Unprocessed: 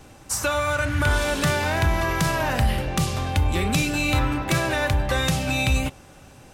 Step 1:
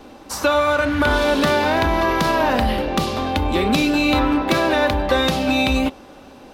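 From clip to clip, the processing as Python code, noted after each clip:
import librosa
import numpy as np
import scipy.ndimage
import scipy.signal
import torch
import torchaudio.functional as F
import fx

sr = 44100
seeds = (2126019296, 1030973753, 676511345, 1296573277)

y = fx.graphic_eq(x, sr, hz=(125, 250, 500, 1000, 4000, 8000), db=(-11, 11, 6, 6, 7, -8))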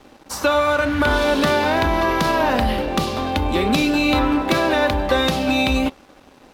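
y = np.sign(x) * np.maximum(np.abs(x) - 10.0 ** (-45.0 / 20.0), 0.0)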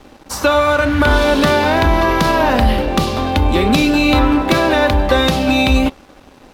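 y = fx.low_shelf(x, sr, hz=110.0, db=6.5)
y = F.gain(torch.from_numpy(y), 4.0).numpy()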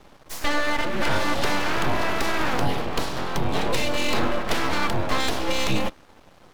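y = np.abs(x)
y = F.gain(torch.from_numpy(y), -7.5).numpy()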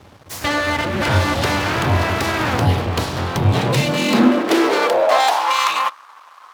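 y = fx.filter_sweep_highpass(x, sr, from_hz=88.0, to_hz=1100.0, start_s=3.41, end_s=5.58, q=5.9)
y = F.gain(torch.from_numpy(y), 5.0).numpy()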